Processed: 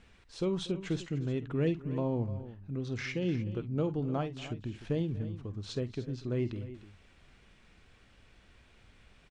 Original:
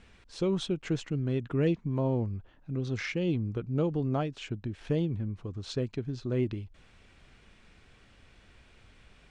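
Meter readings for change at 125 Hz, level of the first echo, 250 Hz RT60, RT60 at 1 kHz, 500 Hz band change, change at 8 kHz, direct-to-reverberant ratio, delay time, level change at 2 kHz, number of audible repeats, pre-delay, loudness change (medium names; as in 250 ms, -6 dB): -3.0 dB, -14.0 dB, no reverb, no reverb, -3.0 dB, -2.5 dB, no reverb, 49 ms, -2.5 dB, 3, no reverb, -3.0 dB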